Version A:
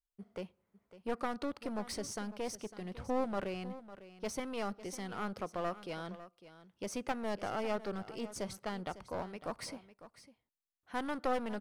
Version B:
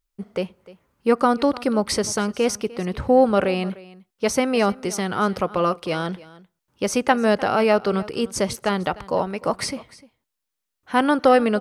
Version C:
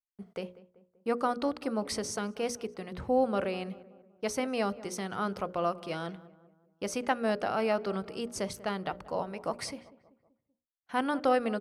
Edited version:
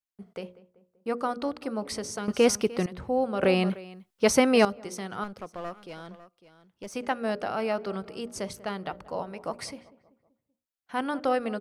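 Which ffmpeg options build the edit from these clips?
-filter_complex "[1:a]asplit=2[s0][s1];[2:a]asplit=4[s2][s3][s4][s5];[s2]atrim=end=2.282[s6];[s0]atrim=start=2.278:end=2.862[s7];[s3]atrim=start=2.858:end=3.432[s8];[s1]atrim=start=3.428:end=4.652[s9];[s4]atrim=start=4.648:end=5.242[s10];[0:a]atrim=start=5.238:end=6.952[s11];[s5]atrim=start=6.948[s12];[s6][s7]acrossfade=d=0.004:c1=hsin:c2=hsin[s13];[s13][s8]acrossfade=d=0.004:c1=hsin:c2=hsin[s14];[s14][s9]acrossfade=d=0.004:c1=hsin:c2=hsin[s15];[s15][s10]acrossfade=d=0.004:c1=hsin:c2=hsin[s16];[s16][s11]acrossfade=d=0.004:c1=hsin:c2=hsin[s17];[s17][s12]acrossfade=d=0.004:c1=hsin:c2=hsin"

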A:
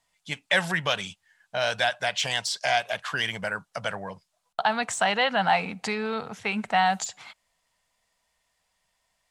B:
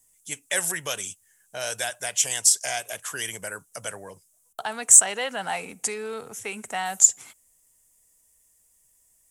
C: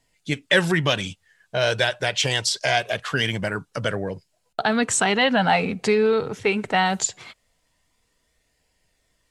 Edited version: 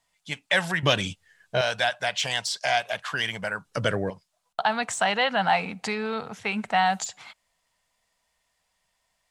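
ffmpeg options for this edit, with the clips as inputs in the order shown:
-filter_complex "[2:a]asplit=2[s0][s1];[0:a]asplit=3[s2][s3][s4];[s2]atrim=end=0.832[s5];[s0]atrim=start=0.828:end=1.612[s6];[s3]atrim=start=1.608:end=3.652[s7];[s1]atrim=start=3.648:end=4.102[s8];[s4]atrim=start=4.098[s9];[s5][s6]acrossfade=d=0.004:c1=hsin:c2=hsin[s10];[s10][s7]acrossfade=d=0.004:c1=hsin:c2=hsin[s11];[s11][s8]acrossfade=d=0.004:c1=hsin:c2=hsin[s12];[s12][s9]acrossfade=d=0.004:c1=hsin:c2=hsin"

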